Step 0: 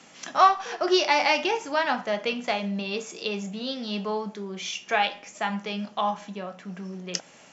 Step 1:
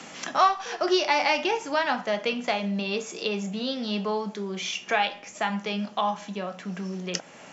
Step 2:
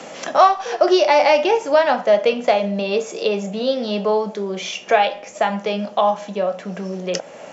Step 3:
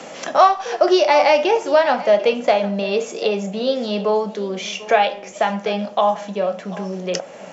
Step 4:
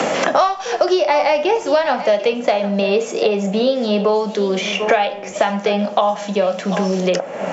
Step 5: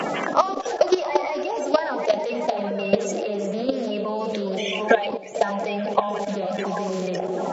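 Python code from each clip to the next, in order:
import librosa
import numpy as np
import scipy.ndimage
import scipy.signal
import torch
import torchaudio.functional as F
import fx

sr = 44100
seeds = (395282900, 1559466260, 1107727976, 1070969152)

y1 = fx.band_squash(x, sr, depth_pct=40)
y2 = fx.peak_eq(y1, sr, hz=560.0, db=12.5, octaves=0.95)
y2 = F.gain(torch.from_numpy(y2), 3.0).numpy()
y3 = y2 + 10.0 ** (-18.0 / 20.0) * np.pad(y2, (int(744 * sr / 1000.0), 0))[:len(y2)]
y4 = fx.band_squash(y3, sr, depth_pct=100)
y5 = fx.spec_quant(y4, sr, step_db=30)
y5 = fx.echo_stepped(y5, sr, ms=224, hz=290.0, octaves=0.7, feedback_pct=70, wet_db=-4.5)
y5 = fx.level_steps(y5, sr, step_db=13)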